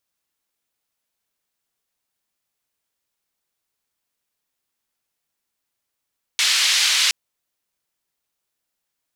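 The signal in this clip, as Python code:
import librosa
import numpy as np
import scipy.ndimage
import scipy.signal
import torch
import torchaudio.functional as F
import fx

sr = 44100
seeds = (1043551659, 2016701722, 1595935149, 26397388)

y = fx.band_noise(sr, seeds[0], length_s=0.72, low_hz=2500.0, high_hz=4400.0, level_db=-18.0)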